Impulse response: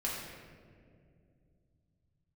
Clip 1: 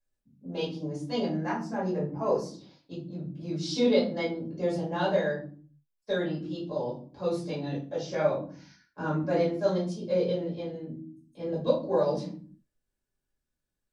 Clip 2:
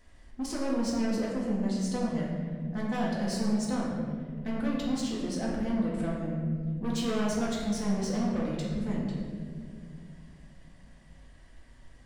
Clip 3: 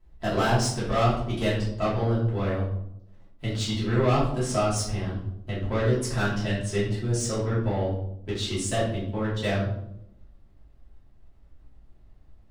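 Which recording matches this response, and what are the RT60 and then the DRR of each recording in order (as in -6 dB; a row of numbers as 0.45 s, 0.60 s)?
2; no single decay rate, 2.3 s, 0.80 s; -9.0 dB, -5.5 dB, -10.0 dB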